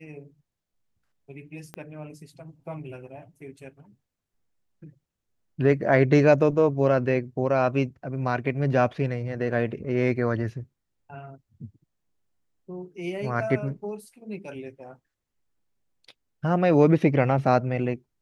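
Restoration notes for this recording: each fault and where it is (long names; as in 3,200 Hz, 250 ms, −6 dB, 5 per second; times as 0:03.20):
0:01.74: click −22 dBFS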